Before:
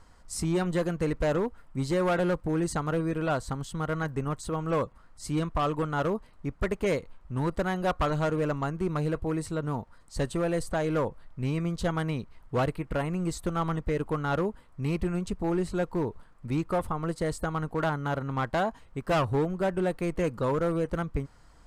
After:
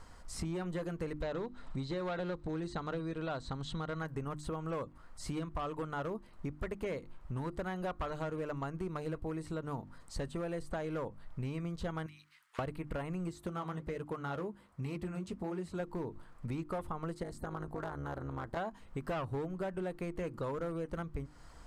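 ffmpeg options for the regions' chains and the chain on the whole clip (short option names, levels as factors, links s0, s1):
-filter_complex "[0:a]asettb=1/sr,asplit=3[s0][s1][s2];[s0]atrim=end=1.214[s3];[s1]atrim=start=1.21:end=3.99,asetpts=PTS-STARTPTS,afade=t=in:d=0.004:c=qsin,afade=t=out:st=2.776:d=0.004:c=qsin,lowpass=f=8000:w=0.5412,lowpass=f=8000:w=1.3066,acompressor=mode=upward:threshold=0.02:ratio=2.5:attack=3.2:release=140:knee=2.83:detection=peak,equalizer=f=3900:w=5:g=12[s4];[s2]atrim=start=3.986[s5];[s3][s4]acrossfade=d=0.004:c1=hsin:c2=qsin[s6];[s6][s5]acrossfade=d=0.004:c1=qsin:c2=hsin,asettb=1/sr,asplit=3[s7][s8][s9];[s7]atrim=end=12.064[s10];[s8]atrim=start=12.06:end=12.59,asetpts=PTS-STARTPTS,afade=t=in:d=0.004:c=qsin,afade=t=out:st=0.526:d=0.004:c=qsin,highpass=f=1500:w=0.5412,highpass=f=1500:w=1.3066,acompressor=threshold=0.00224:ratio=4:attack=3.2:release=140:knee=1:detection=peak[s11];[s9]atrim=start=12.586[s12];[s10][s11]acrossfade=d=0.004:c1=hsin:c2=qsin[s13];[s13][s12]acrossfade=d=0.004:c1=qsin:c2=hsin,asettb=1/sr,asplit=3[s14][s15][s16];[s14]atrim=end=13.294[s17];[s15]atrim=start=13.29:end=15.8,asetpts=PTS-STARTPTS,afade=t=in:d=0.004:c=qsin,afade=t=out:st=2.506:d=0.004:c=qsin,highpass=71,flanger=delay=0.5:depth=9.9:regen=-55:speed=1.3:shape=triangular[s18];[s16]atrim=start=15.796[s19];[s17][s18]acrossfade=d=0.004:c1=hsin:c2=qsin[s20];[s20][s19]acrossfade=d=0.004:c1=qsin:c2=hsin,asettb=1/sr,asplit=3[s21][s22][s23];[s21]atrim=end=17.234[s24];[s22]atrim=start=17.23:end=18.57,asetpts=PTS-STARTPTS,afade=t=in:d=0.004:c=qsin,afade=t=out:st=1.336:d=0.004:c=qsin,equalizer=f=2700:w=1.5:g=-6.5,acompressor=threshold=0.0316:ratio=2.5:attack=3.2:release=140:knee=1:detection=peak,tremolo=f=210:d=0.857[s25];[s23]atrim=start=18.566[s26];[s24][s25]acrossfade=d=0.004:c1=hsin:c2=qsin[s27];[s27][s26]acrossfade=d=0.004:c1=qsin:c2=hsin,acrossover=split=3600[s28][s29];[s29]acompressor=threshold=0.00355:ratio=4:attack=1:release=60[s30];[s28][s30]amix=inputs=2:normalize=0,bandreject=f=50:t=h:w=6,bandreject=f=100:t=h:w=6,bandreject=f=150:t=h:w=6,bandreject=f=200:t=h:w=6,bandreject=f=250:t=h:w=6,bandreject=f=300:t=h:w=6,bandreject=f=350:t=h:w=6,acompressor=threshold=0.0112:ratio=5,volume=1.33"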